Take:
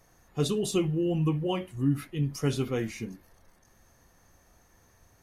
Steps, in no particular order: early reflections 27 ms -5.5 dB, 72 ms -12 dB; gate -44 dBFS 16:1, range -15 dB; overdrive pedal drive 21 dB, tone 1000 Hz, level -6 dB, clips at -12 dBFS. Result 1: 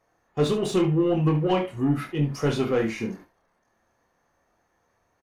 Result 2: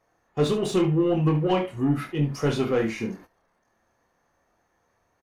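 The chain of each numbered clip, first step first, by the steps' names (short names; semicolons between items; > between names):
overdrive pedal > gate > early reflections; overdrive pedal > early reflections > gate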